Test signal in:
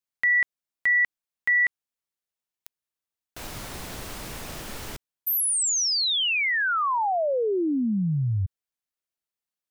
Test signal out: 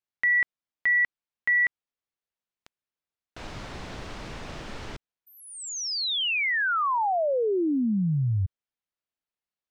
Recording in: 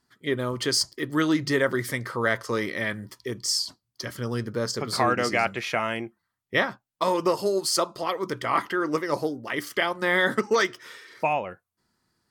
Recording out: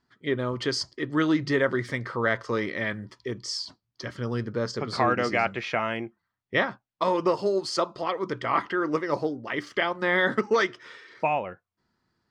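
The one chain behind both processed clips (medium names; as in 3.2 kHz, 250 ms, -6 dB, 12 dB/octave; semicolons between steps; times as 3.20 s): distance through air 130 m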